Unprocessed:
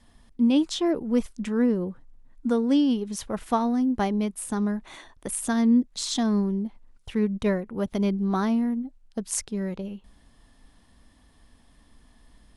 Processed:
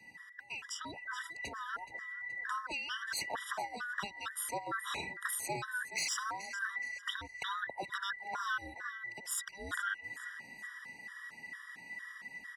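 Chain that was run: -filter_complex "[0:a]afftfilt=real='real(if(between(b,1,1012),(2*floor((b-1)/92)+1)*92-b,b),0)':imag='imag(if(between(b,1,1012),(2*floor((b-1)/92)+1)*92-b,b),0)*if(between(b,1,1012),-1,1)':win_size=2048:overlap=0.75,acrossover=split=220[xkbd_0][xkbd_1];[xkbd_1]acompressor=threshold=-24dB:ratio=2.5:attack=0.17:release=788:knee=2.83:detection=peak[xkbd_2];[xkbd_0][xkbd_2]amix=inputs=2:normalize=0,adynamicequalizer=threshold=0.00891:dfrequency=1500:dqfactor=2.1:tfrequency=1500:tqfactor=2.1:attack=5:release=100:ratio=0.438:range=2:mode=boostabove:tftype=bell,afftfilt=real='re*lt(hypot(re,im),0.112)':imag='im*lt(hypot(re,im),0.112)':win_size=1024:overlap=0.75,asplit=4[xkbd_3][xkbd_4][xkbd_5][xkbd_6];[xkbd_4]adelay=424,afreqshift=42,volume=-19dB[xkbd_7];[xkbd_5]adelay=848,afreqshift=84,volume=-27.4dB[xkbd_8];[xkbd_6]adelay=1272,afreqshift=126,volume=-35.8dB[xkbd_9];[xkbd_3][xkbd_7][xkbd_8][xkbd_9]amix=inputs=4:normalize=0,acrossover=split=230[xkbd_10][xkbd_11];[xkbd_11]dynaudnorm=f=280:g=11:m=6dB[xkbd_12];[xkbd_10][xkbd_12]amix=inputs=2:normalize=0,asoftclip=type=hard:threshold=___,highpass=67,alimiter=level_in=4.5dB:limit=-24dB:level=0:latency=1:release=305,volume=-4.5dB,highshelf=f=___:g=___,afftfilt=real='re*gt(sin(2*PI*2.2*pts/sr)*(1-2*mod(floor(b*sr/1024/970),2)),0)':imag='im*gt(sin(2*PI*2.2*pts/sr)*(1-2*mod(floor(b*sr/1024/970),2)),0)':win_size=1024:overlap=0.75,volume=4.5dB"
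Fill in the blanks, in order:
-24dB, 8800, -9.5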